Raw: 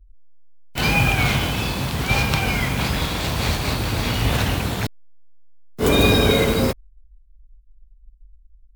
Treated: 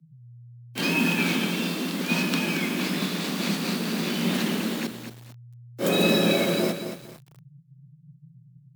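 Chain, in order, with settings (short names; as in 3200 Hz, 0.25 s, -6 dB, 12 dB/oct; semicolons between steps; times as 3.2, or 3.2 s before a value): bell 760 Hz -6 dB 1.2 oct; frequency shift +120 Hz; lo-fi delay 0.227 s, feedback 35%, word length 6-bit, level -8 dB; gain -5 dB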